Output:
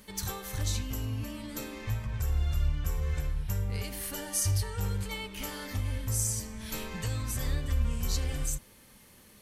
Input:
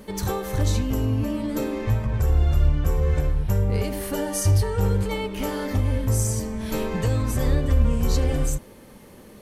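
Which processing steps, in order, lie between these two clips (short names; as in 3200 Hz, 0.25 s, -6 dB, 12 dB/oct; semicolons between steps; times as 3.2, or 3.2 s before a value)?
passive tone stack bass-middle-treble 5-5-5; gain +4.5 dB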